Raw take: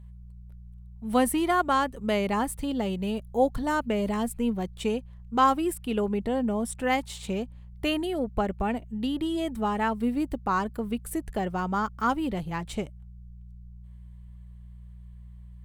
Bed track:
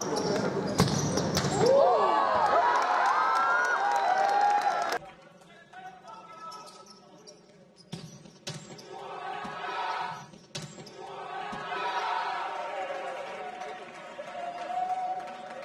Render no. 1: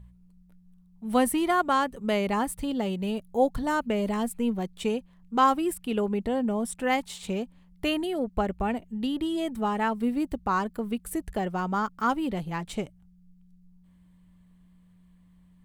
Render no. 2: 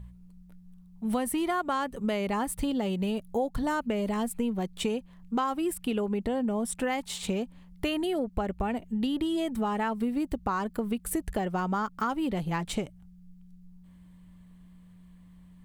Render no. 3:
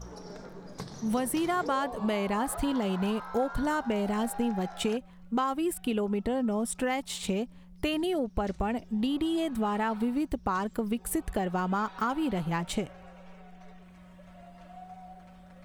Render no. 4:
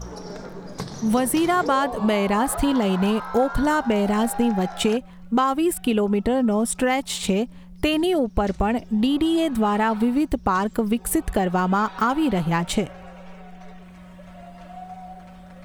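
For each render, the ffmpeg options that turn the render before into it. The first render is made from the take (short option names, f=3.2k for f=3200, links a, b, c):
-af "bandreject=f=60:t=h:w=4,bandreject=f=120:t=h:w=4"
-filter_complex "[0:a]asplit=2[a][b];[b]alimiter=limit=-20dB:level=0:latency=1,volume=-2.5dB[c];[a][c]amix=inputs=2:normalize=0,acompressor=threshold=-26dB:ratio=6"
-filter_complex "[1:a]volume=-16.5dB[a];[0:a][a]amix=inputs=2:normalize=0"
-af "volume=8.5dB"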